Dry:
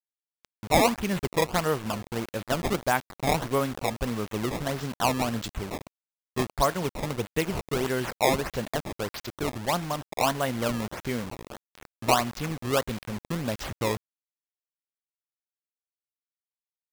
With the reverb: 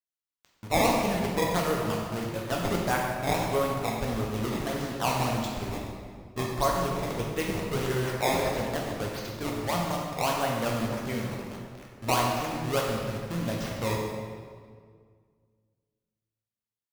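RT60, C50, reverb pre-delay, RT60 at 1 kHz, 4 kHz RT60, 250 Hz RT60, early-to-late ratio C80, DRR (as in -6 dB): 1.9 s, 1.0 dB, 7 ms, 1.8 s, 1.4 s, 2.3 s, 2.5 dB, -2.0 dB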